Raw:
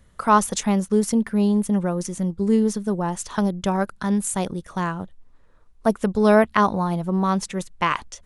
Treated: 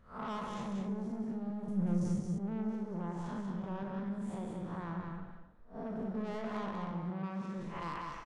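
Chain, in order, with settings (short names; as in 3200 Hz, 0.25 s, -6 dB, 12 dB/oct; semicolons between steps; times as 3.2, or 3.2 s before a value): time blur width 0.166 s; tape spacing loss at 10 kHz 24 dB; soft clip -25.5 dBFS, distortion -8 dB; non-linear reverb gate 0.33 s flat, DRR 10 dB; compressor 5:1, threshold -35 dBFS, peak gain reduction 10 dB; 1.68–2.2 tone controls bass +10 dB, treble +15 dB; 6.91–7.55 HPF 110 Hz; loudspeakers at several distances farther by 14 m -11 dB, 64 m -4 dB; gain -4 dB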